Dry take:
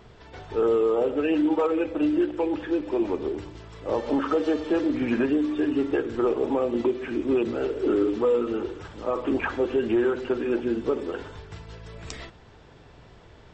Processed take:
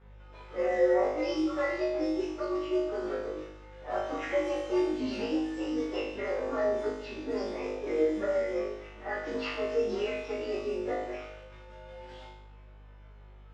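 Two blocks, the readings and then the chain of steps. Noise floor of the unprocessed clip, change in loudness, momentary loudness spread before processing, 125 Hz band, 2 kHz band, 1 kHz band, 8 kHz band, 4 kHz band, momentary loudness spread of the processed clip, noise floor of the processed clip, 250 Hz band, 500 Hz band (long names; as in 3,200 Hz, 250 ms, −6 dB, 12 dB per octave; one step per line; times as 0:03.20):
−51 dBFS, −6.0 dB, 16 LU, −9.5 dB, −3.0 dB, −4.0 dB, can't be measured, −1.0 dB, 18 LU, −51 dBFS, −9.0 dB, −5.0 dB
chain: partials spread apart or drawn together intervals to 128%
low-pass that shuts in the quiet parts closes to 2,600 Hz, open at −21 dBFS
high-pass filter 540 Hz 6 dB per octave
high-shelf EQ 6,000 Hz +4 dB
notch filter 4,400 Hz, Q 18
in parallel at −12 dB: bit-depth reduction 8 bits, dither none
on the sum: mains hum 50 Hz, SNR 25 dB
high-frequency loss of the air 100 metres
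on a send: flutter between parallel walls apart 3.3 metres, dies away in 0.71 s
on the sum: level −6 dB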